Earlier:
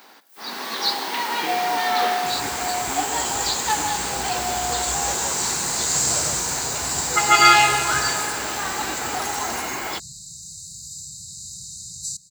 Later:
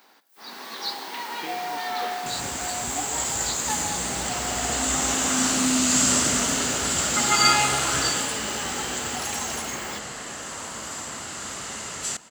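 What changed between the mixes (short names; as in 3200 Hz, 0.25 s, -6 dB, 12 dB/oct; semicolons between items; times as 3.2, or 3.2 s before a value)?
speech -5.5 dB; first sound -8.0 dB; second sound: remove brick-wall FIR band-stop 190–3700 Hz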